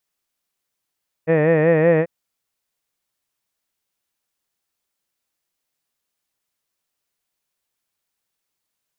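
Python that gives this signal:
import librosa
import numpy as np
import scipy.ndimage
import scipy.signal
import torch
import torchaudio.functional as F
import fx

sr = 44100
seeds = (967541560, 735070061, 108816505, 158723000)

y = fx.vowel(sr, seeds[0], length_s=0.79, word='head', hz=156.0, glide_st=1.0, vibrato_hz=5.3, vibrato_st=0.9)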